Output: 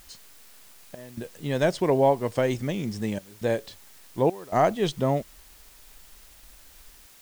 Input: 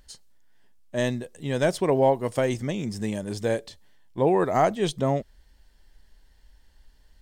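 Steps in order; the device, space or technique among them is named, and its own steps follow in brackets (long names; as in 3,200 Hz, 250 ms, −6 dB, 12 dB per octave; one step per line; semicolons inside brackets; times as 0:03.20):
worn cassette (low-pass filter 6,900 Hz; tape wow and flutter; tape dropouts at 0:00.95/0:03.19/0:04.30/0:07.06, 220 ms −19 dB; white noise bed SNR 25 dB)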